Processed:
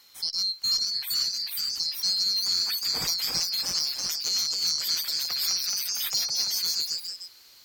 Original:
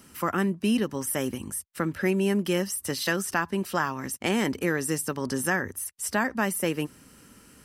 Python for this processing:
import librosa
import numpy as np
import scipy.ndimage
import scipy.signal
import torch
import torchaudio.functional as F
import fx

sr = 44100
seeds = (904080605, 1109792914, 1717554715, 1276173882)

y = fx.band_swap(x, sr, width_hz=4000)
y = fx.peak_eq(y, sr, hz=2900.0, db=12.5, octaves=0.21)
y = fx.echo_pitch(y, sr, ms=502, semitones=1, count=3, db_per_echo=-3.0)
y = fx.cheby_harmonics(y, sr, harmonics=(4,), levels_db=(-31,), full_scale_db=-7.5)
y = fx.band_squash(y, sr, depth_pct=70, at=(5.41, 6.49))
y = F.gain(torch.from_numpy(y), -3.5).numpy()